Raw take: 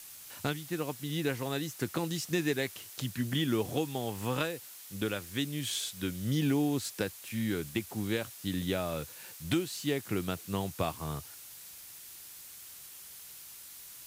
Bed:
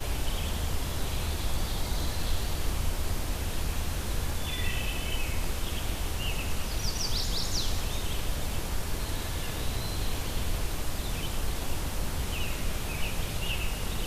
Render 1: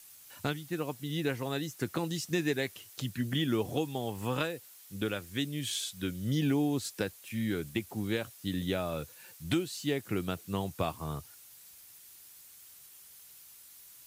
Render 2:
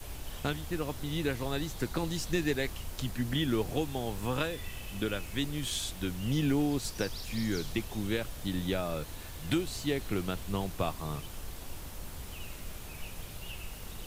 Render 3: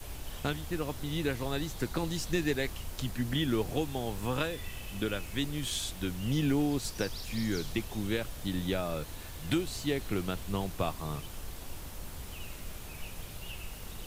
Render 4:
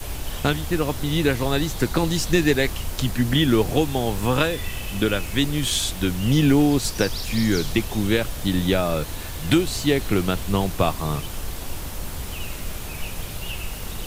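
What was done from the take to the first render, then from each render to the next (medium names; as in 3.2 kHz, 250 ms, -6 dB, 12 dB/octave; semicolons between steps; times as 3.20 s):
noise reduction 7 dB, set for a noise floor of -49 dBFS
add bed -11.5 dB
no audible change
trim +11.5 dB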